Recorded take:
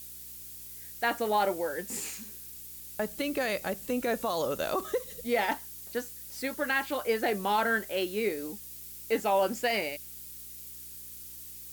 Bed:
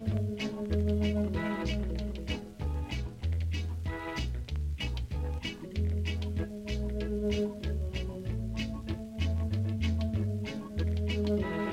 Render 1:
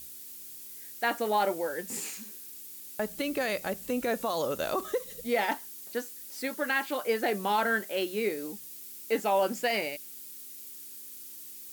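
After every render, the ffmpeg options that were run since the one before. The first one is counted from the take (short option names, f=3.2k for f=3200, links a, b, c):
-af "bandreject=f=60:t=h:w=4,bandreject=f=120:t=h:w=4,bandreject=f=180:t=h:w=4"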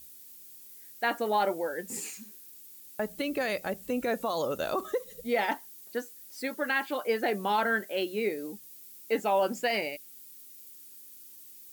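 -af "afftdn=nr=7:nf=-45"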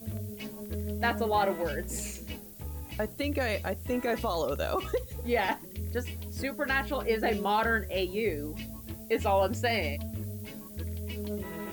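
-filter_complex "[1:a]volume=-6dB[a];[0:a][a]amix=inputs=2:normalize=0"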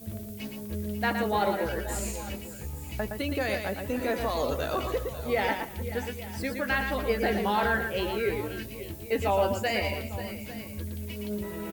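-filter_complex "[0:a]asplit=2[a][b];[b]adelay=15,volume=-12dB[c];[a][c]amix=inputs=2:normalize=0,aecho=1:1:116|292|534|542|851:0.501|0.106|0.133|0.188|0.15"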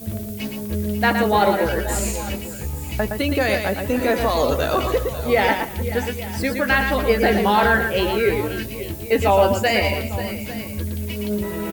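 -af "volume=9.5dB"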